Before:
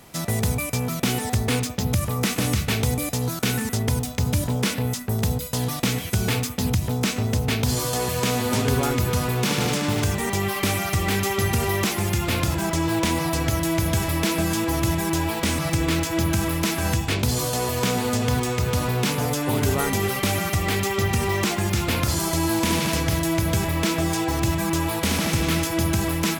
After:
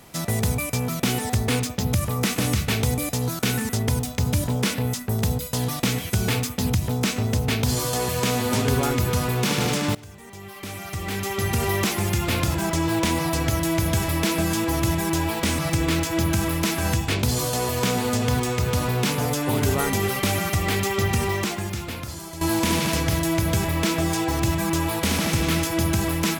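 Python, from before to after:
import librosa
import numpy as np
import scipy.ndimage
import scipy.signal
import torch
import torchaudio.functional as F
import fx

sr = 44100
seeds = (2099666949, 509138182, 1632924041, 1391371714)

y = fx.edit(x, sr, fx.fade_in_from(start_s=9.95, length_s=1.72, curve='qua', floor_db=-20.5),
    fx.fade_out_to(start_s=21.21, length_s=1.2, curve='qua', floor_db=-13.0), tone=tone)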